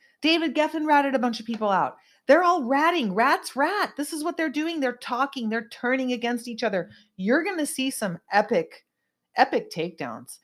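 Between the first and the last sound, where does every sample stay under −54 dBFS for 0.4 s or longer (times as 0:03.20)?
0:08.80–0:09.35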